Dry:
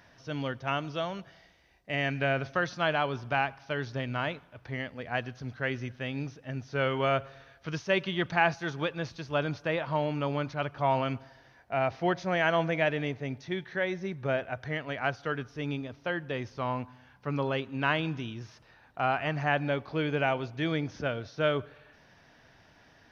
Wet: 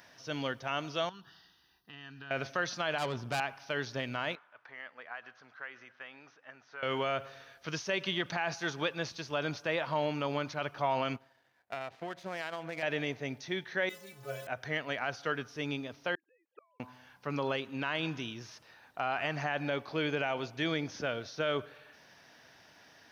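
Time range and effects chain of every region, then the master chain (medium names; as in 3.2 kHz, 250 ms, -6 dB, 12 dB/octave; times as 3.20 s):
1.09–2.31 s: compression 3:1, threshold -43 dBFS + static phaser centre 2.2 kHz, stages 6
2.98–3.40 s: bass shelf 280 Hz +10.5 dB + valve stage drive 28 dB, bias 0.45
4.35–6.83 s: compression 10:1, threshold -32 dBFS + band-pass filter 1.3 kHz, Q 1.6
11.16–12.83 s: peaking EQ 5.5 kHz -10.5 dB 0.7 oct + compression 16:1, threshold -30 dBFS + power-law waveshaper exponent 1.4
13.89–14.47 s: jump at every zero crossing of -34.5 dBFS + inharmonic resonator 63 Hz, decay 0.76 s, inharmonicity 0.03 + tape noise reduction on one side only decoder only
16.15–16.80 s: formants replaced by sine waves + comb 3.6 ms, depth 38% + inverted gate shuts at -36 dBFS, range -38 dB
whole clip: treble shelf 4.8 kHz +10 dB; peak limiter -20 dBFS; high-pass 260 Hz 6 dB/octave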